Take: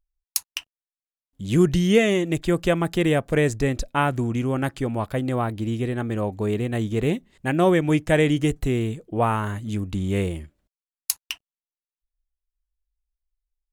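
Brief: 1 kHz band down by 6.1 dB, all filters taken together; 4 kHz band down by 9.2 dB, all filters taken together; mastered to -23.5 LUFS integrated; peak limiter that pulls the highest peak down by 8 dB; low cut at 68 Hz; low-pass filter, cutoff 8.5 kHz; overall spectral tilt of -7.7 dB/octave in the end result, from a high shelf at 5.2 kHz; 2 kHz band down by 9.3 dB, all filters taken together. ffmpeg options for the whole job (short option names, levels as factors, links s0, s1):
-af "highpass=68,lowpass=8500,equalizer=f=1000:t=o:g=-6.5,equalizer=f=2000:t=o:g=-7,equalizer=f=4000:t=o:g=-6.5,highshelf=f=5200:g=-6.5,volume=1.33,alimiter=limit=0.211:level=0:latency=1"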